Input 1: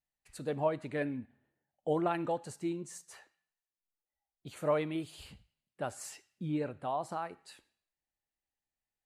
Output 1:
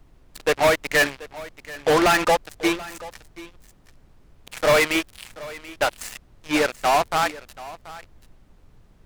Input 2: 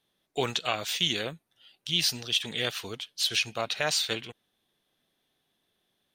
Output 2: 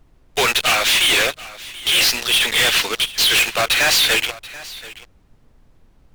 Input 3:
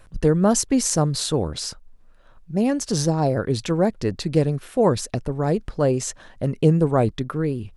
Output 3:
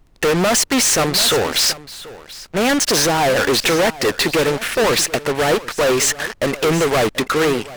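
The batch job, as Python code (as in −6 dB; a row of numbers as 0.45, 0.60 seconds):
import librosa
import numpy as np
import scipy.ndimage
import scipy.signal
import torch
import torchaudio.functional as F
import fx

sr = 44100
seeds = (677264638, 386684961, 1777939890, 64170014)

p1 = scipy.signal.sosfilt(scipy.signal.butter(2, 370.0, 'highpass', fs=sr, output='sos'), x)
p2 = fx.peak_eq(p1, sr, hz=2100.0, db=12.5, octaves=1.7)
p3 = fx.fuzz(p2, sr, gain_db=38.0, gate_db=-40.0)
p4 = fx.dmg_noise_colour(p3, sr, seeds[0], colour='brown', level_db=-43.0)
p5 = p4 + fx.echo_single(p4, sr, ms=733, db=-12.5, dry=0)
y = fx.upward_expand(p5, sr, threshold_db=-29.0, expansion=1.5)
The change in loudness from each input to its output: +15.0, +13.5, +5.5 LU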